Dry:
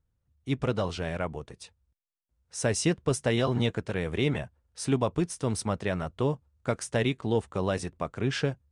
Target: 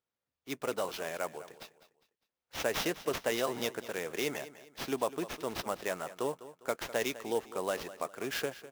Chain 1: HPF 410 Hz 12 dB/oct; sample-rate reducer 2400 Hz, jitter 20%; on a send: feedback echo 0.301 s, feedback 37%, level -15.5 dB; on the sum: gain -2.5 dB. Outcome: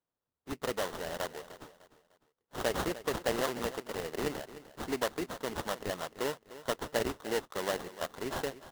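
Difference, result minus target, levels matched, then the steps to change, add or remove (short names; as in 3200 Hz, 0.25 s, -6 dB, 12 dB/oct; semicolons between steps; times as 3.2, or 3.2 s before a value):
echo 99 ms late; sample-rate reducer: distortion +8 dB
change: sample-rate reducer 8900 Hz, jitter 20%; change: feedback echo 0.202 s, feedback 37%, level -15.5 dB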